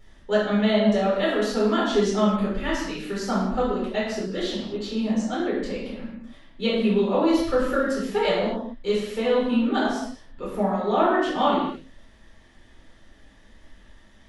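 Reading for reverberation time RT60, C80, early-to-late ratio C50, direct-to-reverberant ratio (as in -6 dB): no single decay rate, 4.0 dB, 1.0 dB, -7.5 dB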